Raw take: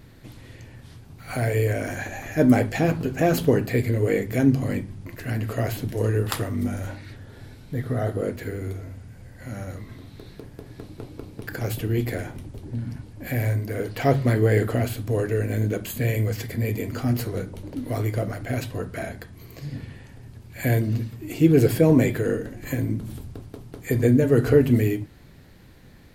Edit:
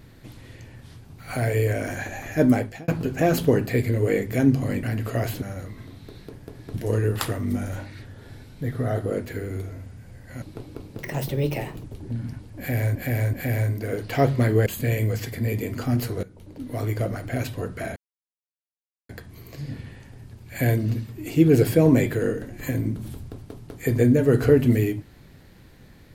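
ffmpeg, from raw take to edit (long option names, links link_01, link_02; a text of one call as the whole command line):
ffmpeg -i in.wav -filter_complex "[0:a]asplit=13[link_01][link_02][link_03][link_04][link_05][link_06][link_07][link_08][link_09][link_10][link_11][link_12][link_13];[link_01]atrim=end=2.88,asetpts=PTS-STARTPTS,afade=type=out:start_time=2.42:duration=0.46[link_14];[link_02]atrim=start=2.88:end=4.832,asetpts=PTS-STARTPTS,afade=type=in:duration=0.004:curve=hsin[link_15];[link_03]atrim=start=5.258:end=5.852[link_16];[link_04]atrim=start=9.528:end=10.852[link_17];[link_05]atrim=start=5.848:end=9.532[link_18];[link_06]atrim=start=10.848:end=11.414[link_19];[link_07]atrim=start=11.41:end=12.47,asetpts=PTS-STARTPTS,asetrate=54243,aresample=44100[link_20];[link_08]atrim=start=12.466:end=13.582[link_21];[link_09]atrim=start=13.198:end=13.582[link_22];[link_10]atrim=start=13.198:end=14.532[link_23];[link_11]atrim=start=15.828:end=17.4,asetpts=PTS-STARTPTS,afade=type=out:start_time=1.568:duration=0.004:curve=hsin:silence=0.149624[link_24];[link_12]atrim=start=17.4:end=19.13,asetpts=PTS-STARTPTS,afade=type=in:duration=0.73:silence=0.149624,afade=type=out:start_time=1.726:duration=0.004:curve=hsin,apad=pad_dur=1.13[link_25];[link_13]atrim=start=19.13,asetpts=PTS-STARTPTS,afade=type=in:duration=0.004:curve=hsin[link_26];[link_14][link_15]concat=n=2:v=0:a=1[link_27];[link_27][link_16]acrossfade=duration=0.004:curve1=hsin:curve2=hsin[link_28];[link_28][link_17]acrossfade=duration=0.004:curve1=hsin:curve2=hsin[link_29];[link_29][link_18]acrossfade=duration=0.004:curve1=hsin:curve2=hsin[link_30];[link_30][link_19]acrossfade=duration=0.004:curve1=hsin:curve2=hsin[link_31];[link_31][link_20]acrossfade=duration=0.004:curve1=hsin:curve2=hsin[link_32];[link_32][link_21]acrossfade=duration=0.004:curve1=hsin:curve2=hsin[link_33];[link_33][link_22]acrossfade=duration=0.004:curve1=hsin:curve2=hsin[link_34];[link_34][link_23]acrossfade=duration=0.004:curve1=hsin:curve2=hsin[link_35];[link_24][link_25][link_26]concat=n=3:v=0:a=1[link_36];[link_35][link_36]acrossfade=duration=0.004:curve1=hsin:curve2=hsin" out.wav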